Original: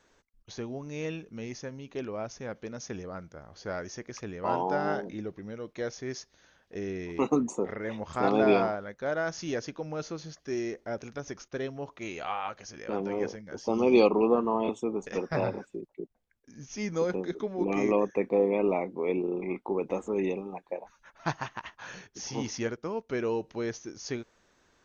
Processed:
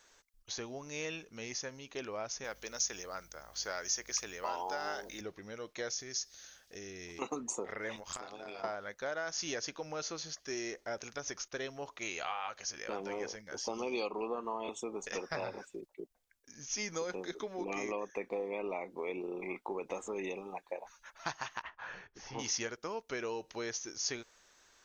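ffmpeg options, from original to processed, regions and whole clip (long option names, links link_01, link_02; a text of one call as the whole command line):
ffmpeg -i in.wav -filter_complex "[0:a]asettb=1/sr,asplit=3[link_01][link_02][link_03];[link_01]atrim=end=2.444[link_04];[link_02]atrim=start=2.44:end=5.21,asetpts=PTS-STARTPTS,afade=type=in:duration=0.004:curve=qsin,afade=type=out:start_time=2.766:duration=0.004:curve=qsin,aemphasis=mode=production:type=bsi,aeval=exprs='val(0)+0.00158*(sin(2*PI*50*n/s)+sin(2*PI*2*50*n/s)/2+sin(2*PI*3*50*n/s)/3+sin(2*PI*4*50*n/s)/4+sin(2*PI*5*50*n/s)/5)':channel_layout=same[link_05];[link_03]atrim=start=5.206[link_06];[link_04][link_05]acrossfade=duration=0.004:curve1=hsin:curve2=qsin[link_07];[link_07][link_06]acrossfade=duration=0.004:curve1=qsin:curve2=hsin,asettb=1/sr,asplit=3[link_08][link_09][link_10];[link_08]atrim=end=5.904[link_11];[link_09]atrim=start=5.9:end=7.22,asetpts=PTS-STARTPTS,afade=type=in:duration=0.004:curve=qsin,afade=type=out:start_time=1.316:duration=0.004:curve=qsin,bass=frequency=250:gain=4,treble=frequency=4000:gain=9,acompressor=threshold=-44dB:ratio=2:attack=3.2:release=140:knee=1:detection=peak,bandreject=frequency=960:width=6.3[link_12];[link_10]atrim=start=7.216[link_13];[link_11][link_12]acrossfade=duration=0.004:curve1=hsin:curve2=qsin[link_14];[link_14][link_13]acrossfade=duration=0.004:curve1=qsin:curve2=hsin,asettb=1/sr,asplit=3[link_15][link_16][link_17];[link_15]atrim=end=7.964[link_18];[link_16]atrim=start=7.96:end=8.64,asetpts=PTS-STARTPTS,afade=type=in:duration=0.004:curve=qsin,afade=type=out:start_time=0.676:duration=0.004:curve=qsin,aemphasis=mode=production:type=50kf,acompressor=threshold=-36dB:ratio=12:attack=3.2:release=140:knee=1:detection=peak,tremolo=f=94:d=0.75[link_19];[link_17]atrim=start=8.636[link_20];[link_18][link_19]acrossfade=duration=0.004:curve1=hsin:curve2=qsin[link_21];[link_21][link_20]acrossfade=duration=0.004:curve1=qsin:curve2=hsin,asettb=1/sr,asplit=3[link_22][link_23][link_24];[link_22]atrim=end=21.624[link_25];[link_23]atrim=start=21.62:end=22.39,asetpts=PTS-STARTPTS,afade=type=in:duration=0.004:curve=qsin,afade=type=out:start_time=0.766:duration=0.004:curve=qsin,lowpass=1800,asubboost=boost=7:cutoff=130[link_26];[link_24]atrim=start=22.386[link_27];[link_25][link_26]acrossfade=duration=0.004:curve1=hsin:curve2=qsin[link_28];[link_28][link_27]acrossfade=duration=0.004:curve1=qsin:curve2=hsin,equalizer=frequency=210:width=0.36:gain=-9.5,acompressor=threshold=-37dB:ratio=4,bass=frequency=250:gain=-5,treble=frequency=4000:gain=6,volume=2.5dB" out.wav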